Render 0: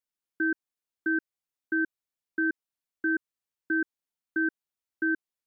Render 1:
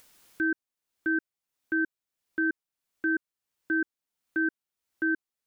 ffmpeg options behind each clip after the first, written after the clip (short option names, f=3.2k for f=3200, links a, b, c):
-af "acompressor=mode=upward:threshold=-35dB:ratio=2.5"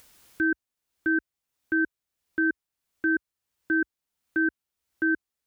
-af "equalizer=f=61:t=o:w=1.5:g=8.5,volume=2.5dB"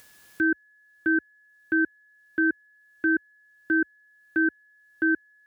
-af "highpass=74,aeval=exprs='val(0)+0.00126*sin(2*PI*1700*n/s)':c=same,volume=1.5dB"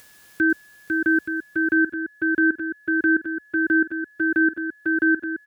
-af "aecho=1:1:500|875|1156|1367|1525:0.631|0.398|0.251|0.158|0.1,volume=3.5dB"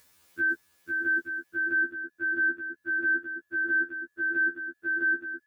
-af "afftfilt=real='re*2*eq(mod(b,4),0)':imag='im*2*eq(mod(b,4),0)':win_size=2048:overlap=0.75,volume=-7.5dB"